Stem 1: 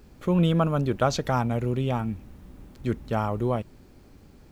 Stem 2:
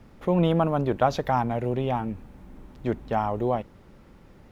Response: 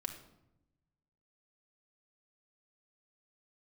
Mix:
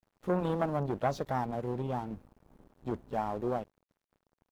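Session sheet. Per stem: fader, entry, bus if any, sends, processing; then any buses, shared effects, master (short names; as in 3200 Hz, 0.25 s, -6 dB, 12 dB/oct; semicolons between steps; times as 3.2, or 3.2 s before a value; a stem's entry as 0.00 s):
+0.5 dB, 0.00 s, no send, gate -43 dBFS, range -8 dB; notches 50/100/150 Hz; flange 1 Hz, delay 4 ms, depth 5.2 ms, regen -75%; auto duck -15 dB, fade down 1.00 s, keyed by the second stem
-5.0 dB, 18 ms, polarity flipped, no send, low shelf 76 Hz -4.5 dB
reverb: off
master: bell 2200 Hz -9.5 dB 1.2 oct; crossover distortion -51.5 dBFS; core saturation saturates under 580 Hz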